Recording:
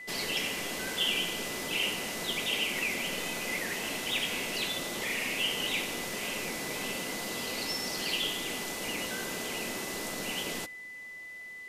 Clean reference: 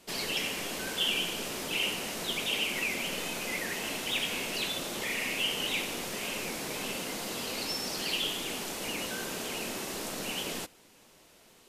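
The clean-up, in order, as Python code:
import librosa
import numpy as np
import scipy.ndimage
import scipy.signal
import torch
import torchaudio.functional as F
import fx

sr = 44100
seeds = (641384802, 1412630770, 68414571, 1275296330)

y = fx.notch(x, sr, hz=2000.0, q=30.0)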